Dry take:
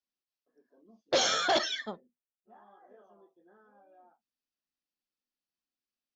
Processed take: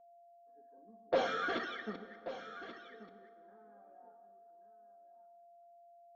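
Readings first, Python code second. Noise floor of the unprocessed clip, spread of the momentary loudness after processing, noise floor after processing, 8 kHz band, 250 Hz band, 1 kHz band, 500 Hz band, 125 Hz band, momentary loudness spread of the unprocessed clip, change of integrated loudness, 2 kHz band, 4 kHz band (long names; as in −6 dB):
below −85 dBFS, 20 LU, −61 dBFS, can't be measured, −3.0 dB, −5.5 dB, −4.0 dB, −2.5 dB, 11 LU, −10.0 dB, −5.0 dB, −16.0 dB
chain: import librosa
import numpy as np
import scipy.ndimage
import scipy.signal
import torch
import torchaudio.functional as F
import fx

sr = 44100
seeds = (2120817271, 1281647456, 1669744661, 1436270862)

p1 = fx.reverse_delay(x, sr, ms=196, wet_db=-9.5)
p2 = scipy.signal.sosfilt(scipy.signal.butter(2, 1600.0, 'lowpass', fs=sr, output='sos'), p1)
p3 = fx.spec_box(p2, sr, start_s=1.27, length_s=2.16, low_hz=520.0, high_hz=1100.0, gain_db=-14)
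p4 = p3 + 10.0 ** (-59.0 / 20.0) * np.sin(2.0 * np.pi * 690.0 * np.arange(len(p3)) / sr)
p5 = p4 + 0.4 * np.pad(p4, (int(4.3 * sr / 1000.0), 0))[:len(p4)]
p6 = p5 + fx.echo_single(p5, sr, ms=1133, db=-12.5, dry=0)
p7 = fx.rev_plate(p6, sr, seeds[0], rt60_s=2.8, hf_ratio=0.6, predelay_ms=0, drr_db=13.0)
y = p7 * 10.0 ** (-3.0 / 20.0)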